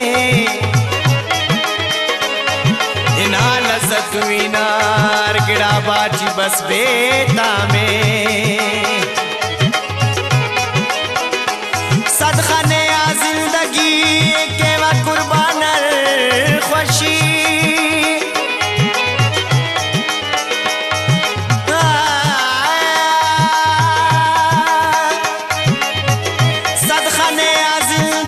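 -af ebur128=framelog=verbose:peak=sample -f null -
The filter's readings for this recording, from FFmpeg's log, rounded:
Integrated loudness:
  I:         -13.5 LUFS
  Threshold: -23.5 LUFS
Loudness range:
  LRA:         2.4 LU
  Threshold: -33.5 LUFS
  LRA low:   -14.9 LUFS
  LRA high:  -12.5 LUFS
Sample peak:
  Peak:       -2.9 dBFS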